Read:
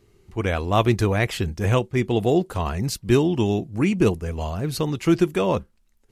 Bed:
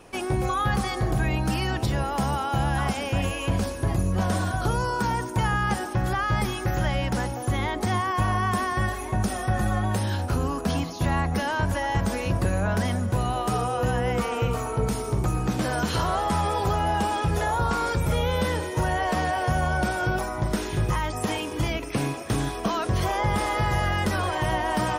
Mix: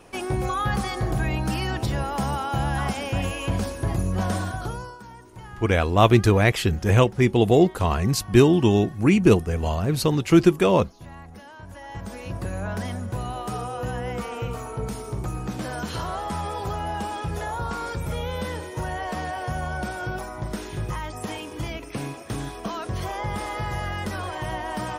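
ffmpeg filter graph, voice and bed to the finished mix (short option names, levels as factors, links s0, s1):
-filter_complex "[0:a]adelay=5250,volume=1.41[s0];[1:a]volume=4.22,afade=t=out:st=4.31:d=0.68:silence=0.133352,afade=t=in:st=11.63:d=1.02:silence=0.223872[s1];[s0][s1]amix=inputs=2:normalize=0"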